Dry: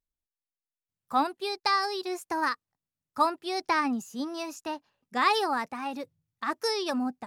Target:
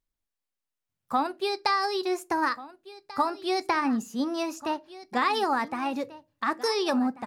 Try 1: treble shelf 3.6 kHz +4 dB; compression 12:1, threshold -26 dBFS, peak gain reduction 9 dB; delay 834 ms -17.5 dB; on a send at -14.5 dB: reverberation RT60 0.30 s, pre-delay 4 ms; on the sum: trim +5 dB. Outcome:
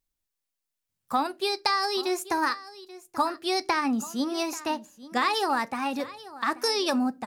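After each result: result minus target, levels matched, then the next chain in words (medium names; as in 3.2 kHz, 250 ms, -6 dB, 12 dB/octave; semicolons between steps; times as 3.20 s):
echo 605 ms early; 8 kHz band +6.0 dB
treble shelf 3.6 kHz +4 dB; compression 12:1, threshold -26 dBFS, peak gain reduction 9 dB; delay 1439 ms -17.5 dB; on a send at -14.5 dB: reverberation RT60 0.30 s, pre-delay 4 ms; on the sum: trim +5 dB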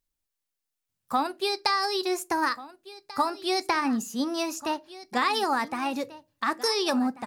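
8 kHz band +6.0 dB
treble shelf 3.6 kHz -4.5 dB; compression 12:1, threshold -26 dBFS, peak gain reduction 8.5 dB; delay 1439 ms -17.5 dB; on a send at -14.5 dB: reverberation RT60 0.30 s, pre-delay 4 ms; on the sum: trim +5 dB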